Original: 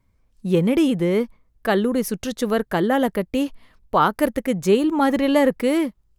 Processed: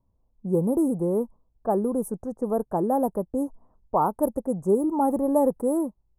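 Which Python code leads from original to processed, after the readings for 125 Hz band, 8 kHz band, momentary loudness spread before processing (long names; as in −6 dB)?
−5.5 dB, −6.5 dB, 8 LU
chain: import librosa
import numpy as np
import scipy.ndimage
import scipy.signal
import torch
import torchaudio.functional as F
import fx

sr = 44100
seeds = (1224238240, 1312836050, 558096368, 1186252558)

y = scipy.signal.sosfilt(scipy.signal.cheby1(3, 1.0, [910.0, 9200.0], 'bandstop', fs=sr, output='sos'), x)
y = fx.env_lowpass(y, sr, base_hz=1600.0, full_db=-16.0)
y = fx.low_shelf(y, sr, hz=470.0, db=-6.0)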